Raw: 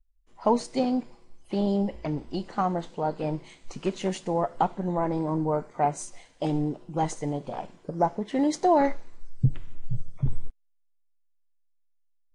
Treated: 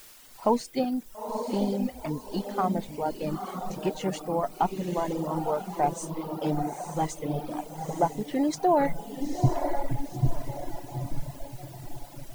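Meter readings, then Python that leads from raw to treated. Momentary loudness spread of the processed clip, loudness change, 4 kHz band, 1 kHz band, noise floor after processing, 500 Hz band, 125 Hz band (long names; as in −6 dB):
11 LU, −1.5 dB, 0.0 dB, −0.5 dB, −47 dBFS, −0.5 dB, −0.5 dB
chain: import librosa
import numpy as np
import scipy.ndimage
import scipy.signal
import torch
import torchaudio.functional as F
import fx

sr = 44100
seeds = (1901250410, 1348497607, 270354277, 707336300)

p1 = fx.echo_diffused(x, sr, ms=924, feedback_pct=47, wet_db=-4.0)
p2 = fx.quant_dither(p1, sr, seeds[0], bits=6, dither='triangular')
p3 = p1 + (p2 * 10.0 ** (-10.5 / 20.0))
p4 = fx.dereverb_blind(p3, sr, rt60_s=1.6)
y = p4 * 10.0 ** (-3.0 / 20.0)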